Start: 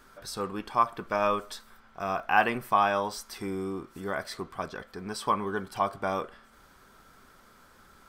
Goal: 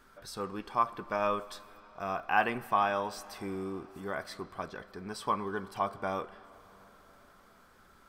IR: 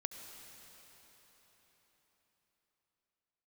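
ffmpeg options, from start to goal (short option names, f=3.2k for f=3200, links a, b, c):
-filter_complex "[0:a]asplit=2[a][b];[1:a]atrim=start_sample=2205,lowpass=4.8k[c];[b][c]afir=irnorm=-1:irlink=0,volume=-9dB[d];[a][d]amix=inputs=2:normalize=0,volume=-6dB"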